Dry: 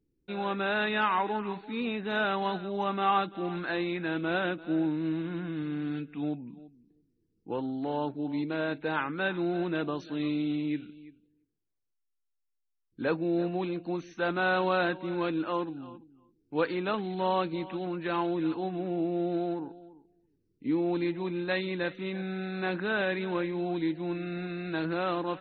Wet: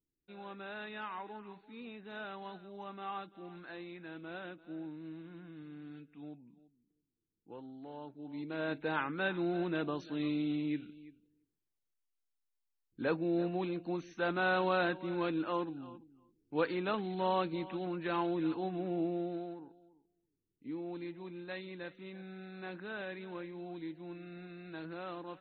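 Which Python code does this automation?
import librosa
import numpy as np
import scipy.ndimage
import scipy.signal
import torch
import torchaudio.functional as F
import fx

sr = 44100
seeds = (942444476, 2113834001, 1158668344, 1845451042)

y = fx.gain(x, sr, db=fx.line((8.14, -15.5), (8.71, -4.0), (19.06, -4.0), (19.55, -13.0)))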